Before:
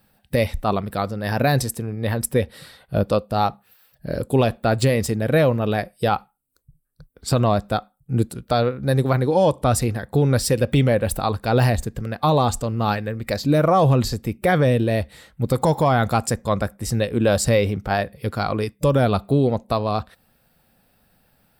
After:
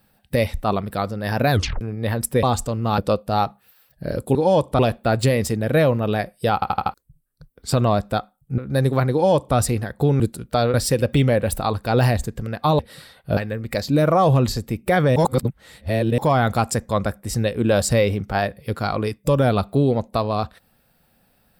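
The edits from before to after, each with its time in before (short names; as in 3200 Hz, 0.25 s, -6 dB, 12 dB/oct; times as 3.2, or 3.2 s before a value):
1.51 tape stop 0.30 s
2.43–3.01 swap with 12.38–12.93
6.13 stutter in place 0.08 s, 5 plays
8.17–8.71 move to 10.33
9.25–9.69 copy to 4.38
14.72–15.74 reverse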